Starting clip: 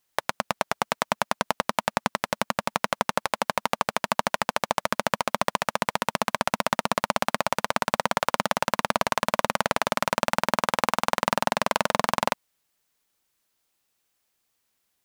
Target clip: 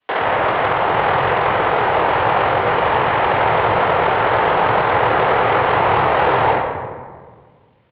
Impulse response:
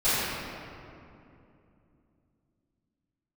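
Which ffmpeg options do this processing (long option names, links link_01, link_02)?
-filter_complex "[0:a]acrossover=split=470|2400[link_01][link_02][link_03];[link_01]acompressor=threshold=-39dB:ratio=4[link_04];[link_02]acompressor=threshold=-28dB:ratio=4[link_05];[link_03]acompressor=threshold=-39dB:ratio=4[link_06];[link_04][link_05][link_06]amix=inputs=3:normalize=0,highpass=frequency=230:width_type=q:width=0.5412,highpass=frequency=230:width_type=q:width=1.307,lowpass=frequency=3300:width_type=q:width=0.5176,lowpass=frequency=3300:width_type=q:width=0.7071,lowpass=frequency=3300:width_type=q:width=1.932,afreqshift=-110[link_07];[1:a]atrim=start_sample=2205,asetrate=36162,aresample=44100[link_08];[link_07][link_08]afir=irnorm=-1:irlink=0,atempo=1.9,volume=1.5dB"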